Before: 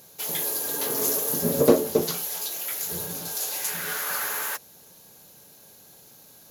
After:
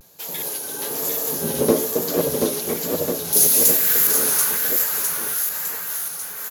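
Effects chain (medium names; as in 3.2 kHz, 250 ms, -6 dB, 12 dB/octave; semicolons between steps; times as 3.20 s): chunks repeated in reverse 390 ms, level -3.5 dB; 3.33–4.08 s: RIAA curve recording; on a send: bouncing-ball echo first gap 740 ms, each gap 0.9×, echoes 5; on the sum: vibrato 1.1 Hz 89 cents; trim -1 dB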